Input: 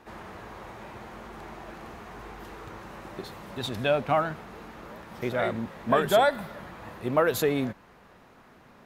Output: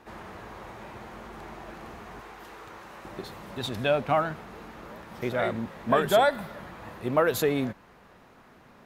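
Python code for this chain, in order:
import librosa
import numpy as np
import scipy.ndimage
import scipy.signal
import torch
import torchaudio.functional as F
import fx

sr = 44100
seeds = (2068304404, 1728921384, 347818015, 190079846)

y = fx.low_shelf(x, sr, hz=300.0, db=-10.5, at=(2.2, 3.05))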